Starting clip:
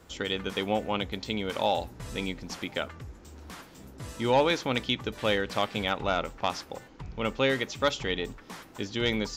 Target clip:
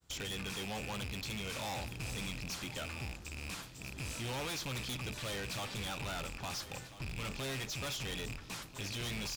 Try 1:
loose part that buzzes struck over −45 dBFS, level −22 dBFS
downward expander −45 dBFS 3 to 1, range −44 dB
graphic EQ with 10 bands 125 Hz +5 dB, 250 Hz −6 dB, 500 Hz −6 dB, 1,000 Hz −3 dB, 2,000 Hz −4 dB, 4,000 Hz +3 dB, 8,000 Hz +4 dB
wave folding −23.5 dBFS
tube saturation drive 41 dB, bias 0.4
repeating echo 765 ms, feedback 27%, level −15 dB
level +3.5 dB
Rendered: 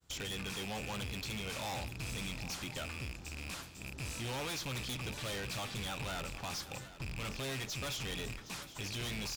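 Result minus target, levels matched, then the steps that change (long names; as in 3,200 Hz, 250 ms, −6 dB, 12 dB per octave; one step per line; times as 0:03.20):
echo 577 ms early
change: repeating echo 1,342 ms, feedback 27%, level −15 dB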